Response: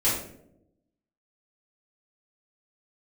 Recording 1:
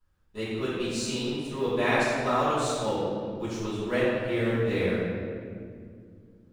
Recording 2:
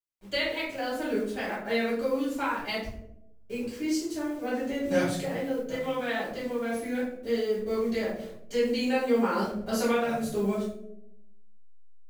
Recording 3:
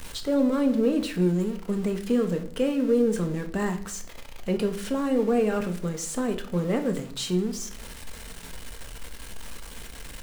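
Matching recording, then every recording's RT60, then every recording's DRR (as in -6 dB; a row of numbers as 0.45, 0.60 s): 2; 2.2, 0.80, 0.55 s; -14.0, -10.5, 5.5 dB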